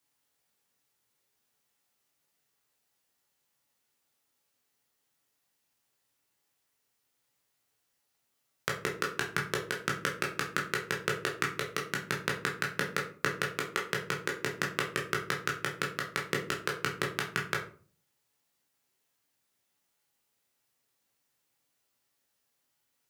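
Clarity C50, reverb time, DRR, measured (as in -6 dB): 8.5 dB, 0.40 s, -1.5 dB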